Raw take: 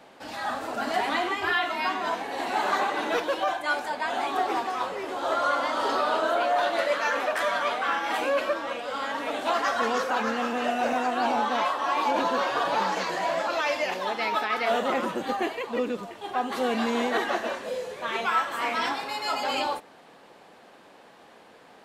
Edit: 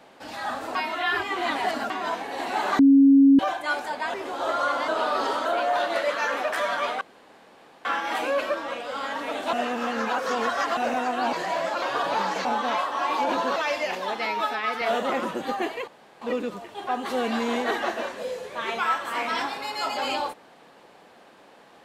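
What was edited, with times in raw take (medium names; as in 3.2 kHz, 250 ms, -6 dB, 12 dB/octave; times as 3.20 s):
0.75–1.90 s: reverse
2.79–3.39 s: bleep 275 Hz -11 dBFS
4.14–4.97 s: delete
5.71–6.28 s: reverse
7.84 s: insert room tone 0.84 s
9.52–10.76 s: reverse
11.32–12.43 s: swap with 13.06–13.55 s
14.25–14.62 s: stretch 1.5×
15.68 s: insert room tone 0.34 s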